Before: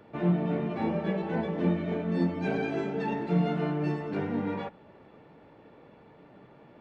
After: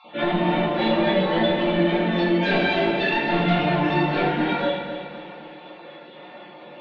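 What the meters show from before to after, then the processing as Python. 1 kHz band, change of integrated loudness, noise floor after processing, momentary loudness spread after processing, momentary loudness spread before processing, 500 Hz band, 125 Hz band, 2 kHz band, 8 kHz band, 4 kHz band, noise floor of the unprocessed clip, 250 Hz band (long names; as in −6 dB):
+12.5 dB, +8.5 dB, −43 dBFS, 17 LU, 4 LU, +9.5 dB, +3.5 dB, +15.5 dB, can't be measured, +21.0 dB, −55 dBFS, +6.5 dB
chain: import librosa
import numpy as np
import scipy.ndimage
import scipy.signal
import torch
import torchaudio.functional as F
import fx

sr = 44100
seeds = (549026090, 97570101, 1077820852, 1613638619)

y = fx.spec_dropout(x, sr, seeds[0], share_pct=26)
y = scipy.signal.sosfilt(scipy.signal.butter(2, 390.0, 'highpass', fs=sr, output='sos'), y)
y = fx.notch(y, sr, hz=2300.0, q=27.0)
y = y + 0.66 * np.pad(y, (int(5.6 * sr / 1000.0), 0))[:len(y)]
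y = fx.over_compress(y, sr, threshold_db=-31.0, ratio=-1.0)
y = fx.fold_sine(y, sr, drive_db=10, ceiling_db=-16.0)
y = fx.wow_flutter(y, sr, seeds[1], rate_hz=2.1, depth_cents=22.0)
y = fx.lowpass_res(y, sr, hz=3600.0, q=3.4)
y = fx.echo_feedback(y, sr, ms=257, feedback_pct=51, wet_db=-10.5)
y = fx.room_shoebox(y, sr, seeds[2], volume_m3=300.0, walls='mixed', distance_m=2.2)
y = y * librosa.db_to_amplitude(-7.5)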